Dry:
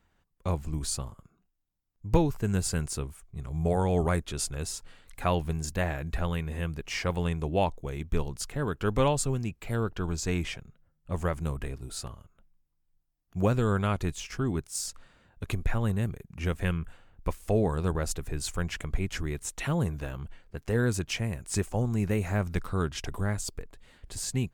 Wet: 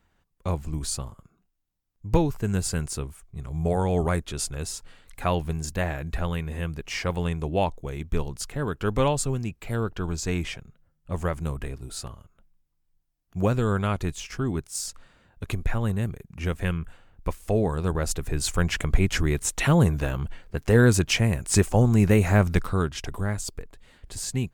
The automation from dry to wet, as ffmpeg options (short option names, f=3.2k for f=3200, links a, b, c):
-af "volume=9dB,afade=t=in:st=17.83:d=1.07:silence=0.446684,afade=t=out:st=22.44:d=0.47:silence=0.446684"